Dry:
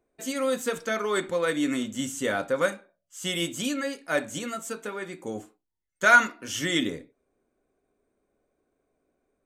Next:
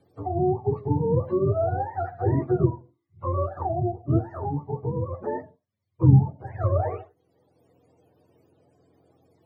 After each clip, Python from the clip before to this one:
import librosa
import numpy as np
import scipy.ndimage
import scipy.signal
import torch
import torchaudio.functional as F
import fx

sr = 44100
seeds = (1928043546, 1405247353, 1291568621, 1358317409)

y = fx.octave_mirror(x, sr, pivot_hz=440.0)
y = fx.band_squash(y, sr, depth_pct=40)
y = F.gain(torch.from_numpy(y), 4.0).numpy()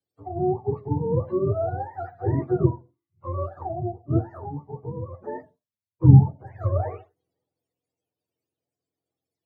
y = fx.band_widen(x, sr, depth_pct=70)
y = F.gain(torch.from_numpy(y), -2.0).numpy()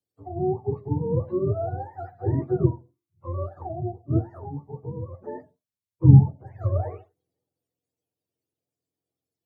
y = fx.peak_eq(x, sr, hz=1600.0, db=-6.0, octaves=2.6)
y = fx.wow_flutter(y, sr, seeds[0], rate_hz=2.1, depth_cents=21.0)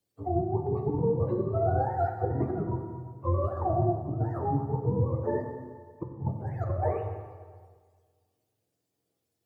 y = fx.over_compress(x, sr, threshold_db=-30.0, ratio=-1.0)
y = fx.rev_plate(y, sr, seeds[1], rt60_s=1.7, hf_ratio=0.85, predelay_ms=0, drr_db=3.0)